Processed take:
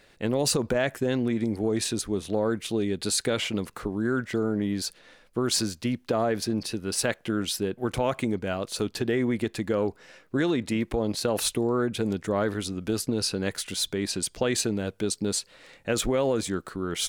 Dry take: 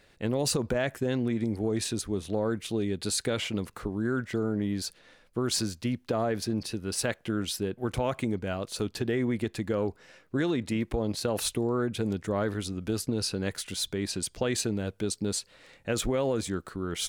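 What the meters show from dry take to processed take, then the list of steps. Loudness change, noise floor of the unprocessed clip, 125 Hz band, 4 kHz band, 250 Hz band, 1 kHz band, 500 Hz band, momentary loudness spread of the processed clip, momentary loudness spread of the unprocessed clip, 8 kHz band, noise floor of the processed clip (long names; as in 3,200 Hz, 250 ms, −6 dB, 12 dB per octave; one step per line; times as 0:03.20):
+3.0 dB, −61 dBFS, 0.0 dB, +3.5 dB, +2.5 dB, +3.5 dB, +3.0 dB, 5 LU, 5 LU, +3.5 dB, −59 dBFS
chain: parametric band 69 Hz −5.5 dB 2 octaves
level +3.5 dB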